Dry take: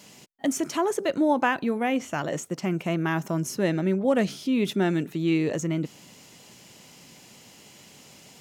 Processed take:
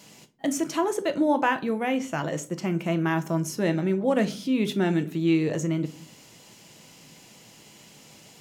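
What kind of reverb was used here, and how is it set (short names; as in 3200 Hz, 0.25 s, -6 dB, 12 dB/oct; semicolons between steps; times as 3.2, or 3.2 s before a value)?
shoebox room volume 230 m³, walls furnished, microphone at 0.67 m; gain -1 dB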